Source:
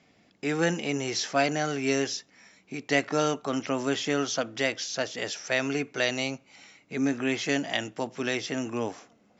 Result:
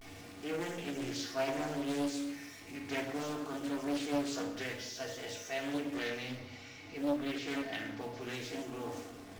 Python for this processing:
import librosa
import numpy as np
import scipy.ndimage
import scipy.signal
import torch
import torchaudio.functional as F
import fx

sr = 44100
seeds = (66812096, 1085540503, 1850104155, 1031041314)

y = x + 0.5 * 10.0 ** (-32.5 / 20.0) * np.sign(x)
y = fx.lowpass(y, sr, hz=5900.0, slope=24, at=(6.0, 8.28))
y = fx.mod_noise(y, sr, seeds[0], snr_db=21)
y = fx.vibrato(y, sr, rate_hz=0.6, depth_cents=83.0)
y = fx.comb_fb(y, sr, f0_hz=95.0, decay_s=0.34, harmonics='odd', damping=0.0, mix_pct=80)
y = fx.room_shoebox(y, sr, seeds[1], volume_m3=3800.0, walls='furnished', distance_m=3.5)
y = fx.doppler_dist(y, sr, depth_ms=0.75)
y = y * 10.0 ** (-6.0 / 20.0)